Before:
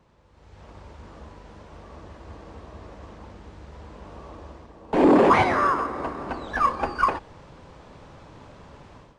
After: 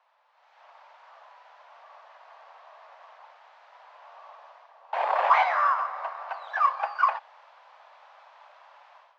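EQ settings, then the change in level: steep high-pass 650 Hz 48 dB/octave; distance through air 190 m; 0.0 dB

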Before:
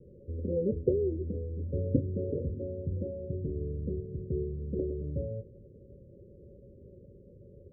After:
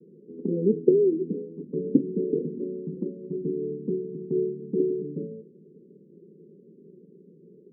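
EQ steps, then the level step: Chebyshev band-pass 160–450 Hz, order 4; dynamic bell 340 Hz, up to +5 dB, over -45 dBFS, Q 0.85; +5.5 dB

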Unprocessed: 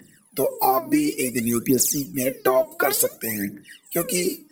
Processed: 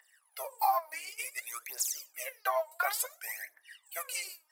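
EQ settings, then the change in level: steep high-pass 730 Hz 36 dB/octave; treble shelf 3.6 kHz -7.5 dB; -5.5 dB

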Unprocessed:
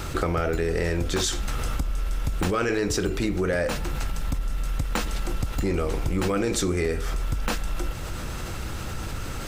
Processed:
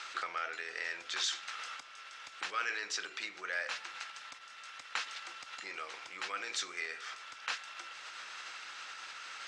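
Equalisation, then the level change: Butterworth band-pass 3.1 kHz, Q 0.58; distance through air 60 m; -3.0 dB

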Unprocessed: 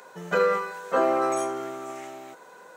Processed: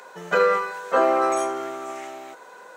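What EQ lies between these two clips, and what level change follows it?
high-pass 400 Hz 6 dB/octave; treble shelf 7.6 kHz -5.5 dB; +5.0 dB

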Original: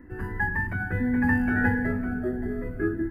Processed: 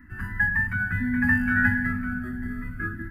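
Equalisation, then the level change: FFT filter 240 Hz 0 dB, 360 Hz -17 dB, 520 Hz -26 dB, 1.3 kHz +6 dB, 2.5 kHz +4 dB; 0.0 dB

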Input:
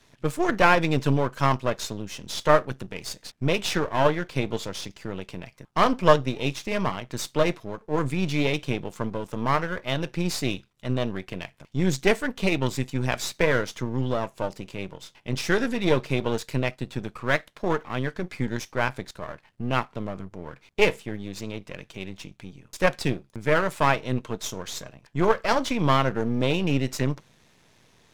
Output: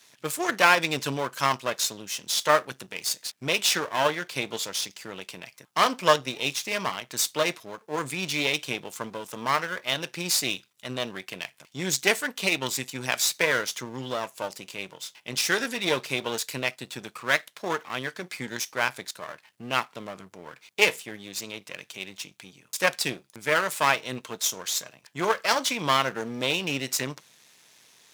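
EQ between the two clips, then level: high-pass 98 Hz; tilt EQ +3.5 dB/octave; -1.0 dB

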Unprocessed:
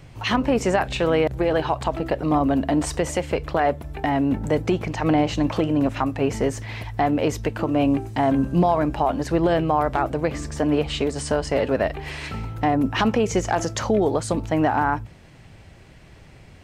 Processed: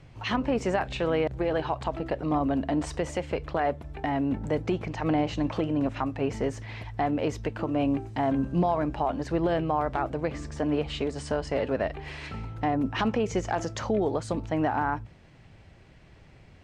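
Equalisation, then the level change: distance through air 61 m; -6.0 dB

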